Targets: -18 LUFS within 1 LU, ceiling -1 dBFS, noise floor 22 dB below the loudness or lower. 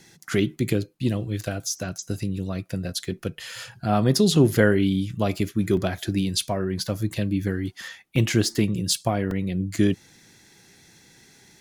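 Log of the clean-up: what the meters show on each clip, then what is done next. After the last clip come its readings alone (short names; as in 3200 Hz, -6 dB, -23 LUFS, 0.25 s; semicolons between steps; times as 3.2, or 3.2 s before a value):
dropouts 4; longest dropout 1.9 ms; loudness -24.5 LUFS; peak -3.5 dBFS; loudness target -18.0 LUFS
-> interpolate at 2.19/5.77/8.16/9.31, 1.9 ms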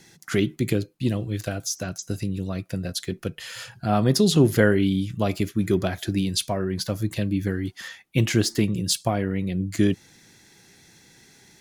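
dropouts 0; loudness -24.5 LUFS; peak -3.5 dBFS; loudness target -18.0 LUFS
-> gain +6.5 dB; limiter -1 dBFS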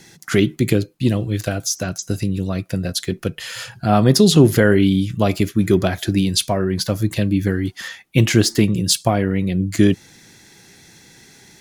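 loudness -18.5 LUFS; peak -1.0 dBFS; noise floor -48 dBFS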